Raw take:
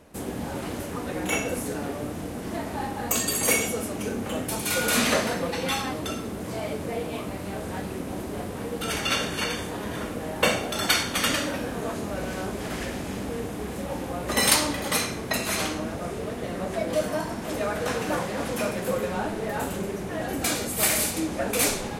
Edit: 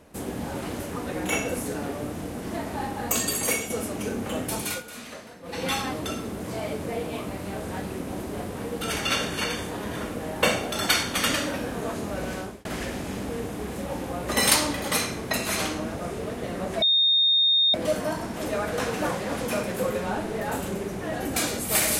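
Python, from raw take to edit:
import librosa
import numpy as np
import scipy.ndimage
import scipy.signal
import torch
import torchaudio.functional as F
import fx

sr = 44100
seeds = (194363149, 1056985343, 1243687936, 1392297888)

y = fx.edit(x, sr, fx.fade_out_to(start_s=3.26, length_s=0.44, floor_db=-7.0),
    fx.fade_down_up(start_s=4.54, length_s=1.18, db=-18.0, fade_s=0.29, curve='qsin'),
    fx.fade_out_span(start_s=12.34, length_s=0.31),
    fx.insert_tone(at_s=16.82, length_s=0.92, hz=3680.0, db=-17.0), tone=tone)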